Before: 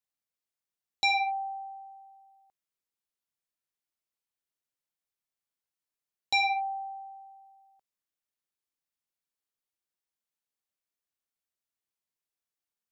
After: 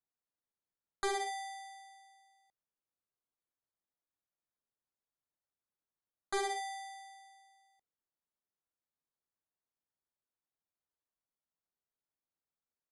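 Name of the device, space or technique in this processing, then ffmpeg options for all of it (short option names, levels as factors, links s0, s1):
crushed at another speed: -af "asetrate=88200,aresample=44100,acrusher=samples=8:mix=1:aa=0.000001,asetrate=22050,aresample=44100,volume=0.376"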